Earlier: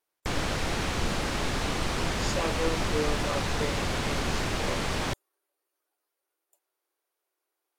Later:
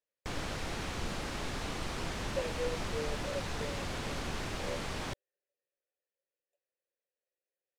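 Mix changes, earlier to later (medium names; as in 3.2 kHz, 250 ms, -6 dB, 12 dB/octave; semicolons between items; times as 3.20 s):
speech: add vowel filter e; background -8.5 dB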